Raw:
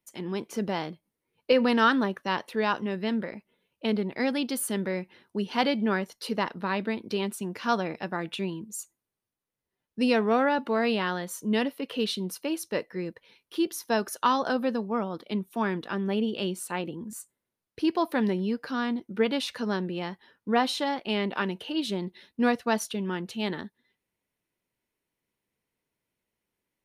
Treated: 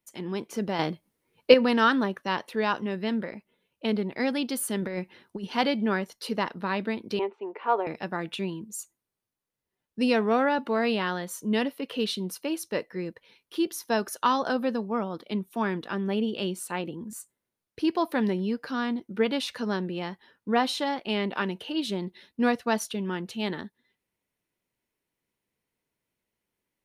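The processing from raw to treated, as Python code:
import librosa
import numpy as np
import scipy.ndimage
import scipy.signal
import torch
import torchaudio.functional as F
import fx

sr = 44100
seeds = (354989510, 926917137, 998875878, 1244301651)

y = fx.over_compress(x, sr, threshold_db=-31.0, ratio=-0.5, at=(4.81, 5.47))
y = fx.cabinet(y, sr, low_hz=370.0, low_slope=24, high_hz=2300.0, hz=(410.0, 870.0, 1600.0), db=(8, 7, -9), at=(7.19, 7.87))
y = fx.edit(y, sr, fx.clip_gain(start_s=0.79, length_s=0.75, db=7.0), tone=tone)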